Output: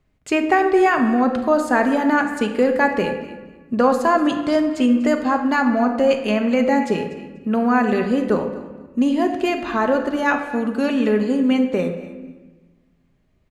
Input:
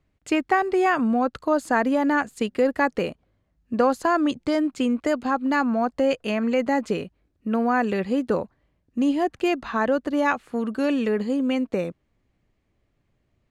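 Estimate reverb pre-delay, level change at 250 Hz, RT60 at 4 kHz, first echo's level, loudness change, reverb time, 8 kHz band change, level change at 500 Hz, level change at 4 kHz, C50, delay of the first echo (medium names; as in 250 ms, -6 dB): 5 ms, +5.0 dB, 1.0 s, -17.5 dB, +4.5 dB, 1.3 s, no reading, +4.5 dB, +4.0 dB, 7.0 dB, 244 ms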